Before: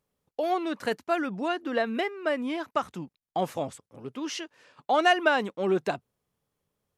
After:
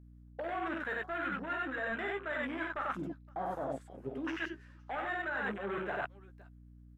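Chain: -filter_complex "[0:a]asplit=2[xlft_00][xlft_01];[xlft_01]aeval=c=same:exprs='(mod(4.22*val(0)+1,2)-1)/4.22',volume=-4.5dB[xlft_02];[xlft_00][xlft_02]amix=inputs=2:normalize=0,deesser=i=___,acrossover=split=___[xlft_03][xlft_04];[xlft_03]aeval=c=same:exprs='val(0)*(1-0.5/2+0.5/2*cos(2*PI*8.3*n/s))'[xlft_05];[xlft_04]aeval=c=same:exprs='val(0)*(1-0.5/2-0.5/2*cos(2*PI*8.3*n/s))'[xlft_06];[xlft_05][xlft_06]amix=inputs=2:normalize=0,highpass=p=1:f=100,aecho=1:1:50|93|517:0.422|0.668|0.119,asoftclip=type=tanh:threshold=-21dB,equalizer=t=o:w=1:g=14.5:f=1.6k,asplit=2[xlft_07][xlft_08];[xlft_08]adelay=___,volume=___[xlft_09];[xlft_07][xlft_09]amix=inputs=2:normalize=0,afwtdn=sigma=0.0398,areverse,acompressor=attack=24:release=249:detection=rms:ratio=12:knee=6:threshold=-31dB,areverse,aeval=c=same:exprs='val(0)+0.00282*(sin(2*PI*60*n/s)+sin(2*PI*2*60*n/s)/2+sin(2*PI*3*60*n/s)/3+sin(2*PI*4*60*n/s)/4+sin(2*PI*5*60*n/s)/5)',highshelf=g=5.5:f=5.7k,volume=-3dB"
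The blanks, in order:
0.9, 940, 15, -7dB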